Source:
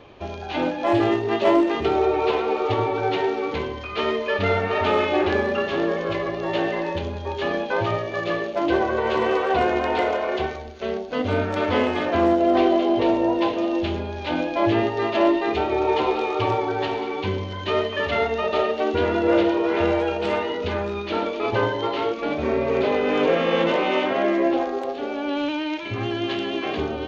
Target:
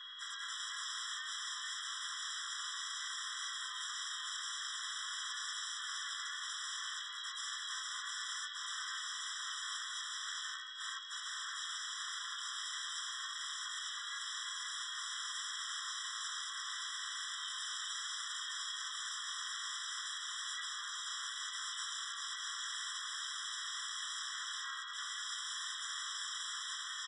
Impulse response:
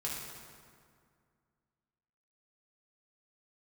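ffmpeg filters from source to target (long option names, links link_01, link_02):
-filter_complex "[0:a]highpass=frequency=1400:width=0.5412,highpass=frequency=1400:width=1.3066,acrossover=split=3000[link_01][link_02];[link_01]acompressor=threshold=-42dB:ratio=8[link_03];[link_03][link_02]amix=inputs=2:normalize=0,alimiter=level_in=7dB:limit=-24dB:level=0:latency=1:release=93,volume=-7dB,aresample=16000,aeval=exprs='(mod(89.1*val(0)+1,2)-1)/89.1':channel_layout=same,aresample=44100,asplit=4[link_04][link_05][link_06][link_07];[link_05]asetrate=29433,aresample=44100,atempo=1.49831,volume=-7dB[link_08];[link_06]asetrate=37084,aresample=44100,atempo=1.18921,volume=-3dB[link_09];[link_07]asetrate=52444,aresample=44100,atempo=0.840896,volume=-1dB[link_10];[link_04][link_08][link_09][link_10]amix=inputs=4:normalize=0,aeval=exprs='val(0)+0.00355*sin(2*PI*3300*n/s)':channel_layout=same,afftfilt=real='re*eq(mod(floor(b*sr/1024/1000),2),1)':imag='im*eq(mod(floor(b*sr/1024/1000),2),1)':win_size=1024:overlap=0.75,volume=1dB"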